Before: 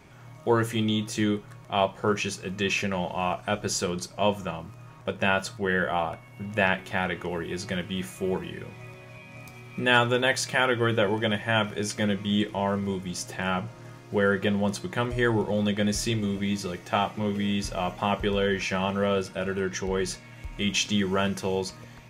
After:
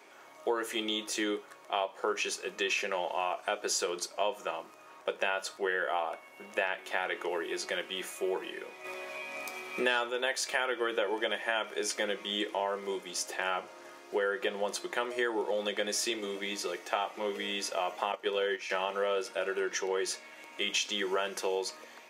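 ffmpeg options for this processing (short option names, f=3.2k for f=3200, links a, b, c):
-filter_complex "[0:a]asplit=3[a][b][c];[a]afade=t=out:st=8.84:d=0.02[d];[b]acontrast=86,afade=t=in:st=8.84:d=0.02,afade=t=out:st=10.09:d=0.02[e];[c]afade=t=in:st=10.09:d=0.02[f];[d][e][f]amix=inputs=3:normalize=0,asettb=1/sr,asplit=3[g][h][i];[g]atrim=end=18.124[j];[h]atrim=start=18.12:end=18.7,asetpts=PTS-STARTPTS,afade=t=in:d=0.004:c=qsin,afade=t=out:st=0.576:d=0.004:c=qsin,agate=range=-10dB:threshold=-27dB:ratio=16:release=100:detection=peak[k];[i]atrim=start=18.696[l];[j][k]acrossfade=d=0.004:c1=hsin:c2=qsin[m];[m][l]acrossfade=d=0.004:c1=qsin:c2=hsin,highpass=f=350:w=0.5412,highpass=f=350:w=1.3066,acompressor=threshold=-27dB:ratio=6"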